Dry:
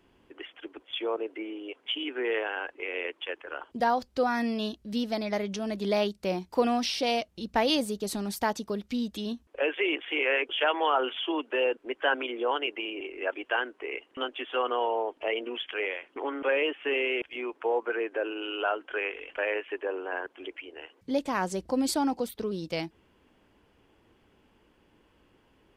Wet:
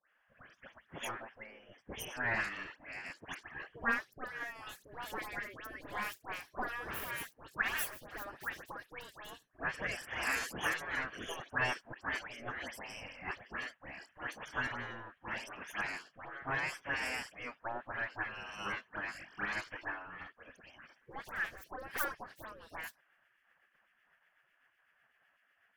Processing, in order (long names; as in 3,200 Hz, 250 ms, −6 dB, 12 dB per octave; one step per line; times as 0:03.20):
stylus tracing distortion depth 0.4 ms
all-pass dispersion highs, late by 108 ms, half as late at 2,000 Hz
rotating-speaker cabinet horn 0.75 Hz, later 8 Hz, at 0:21.76
octave-band graphic EQ 125/250/1,000/4,000/8,000 Hz +4/−3/+7/−12/−9 dB
gate on every frequency bin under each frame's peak −15 dB weak
parametric band 1,700 Hz +11 dB 0.38 octaves